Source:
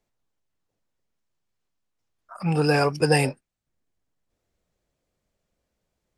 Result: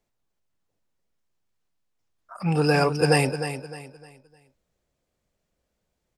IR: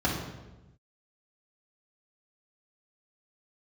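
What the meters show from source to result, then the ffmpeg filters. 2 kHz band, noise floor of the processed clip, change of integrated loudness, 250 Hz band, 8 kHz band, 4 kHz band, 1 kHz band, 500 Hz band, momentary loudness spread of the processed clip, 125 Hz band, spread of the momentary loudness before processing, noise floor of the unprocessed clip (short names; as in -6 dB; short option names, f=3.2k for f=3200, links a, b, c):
+0.5 dB, -79 dBFS, -0.5 dB, +0.5 dB, +0.5 dB, +0.5 dB, +0.5 dB, +0.5 dB, 17 LU, +0.5 dB, 8 LU, -81 dBFS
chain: -af "aecho=1:1:305|610|915|1220:0.316|0.104|0.0344|0.0114"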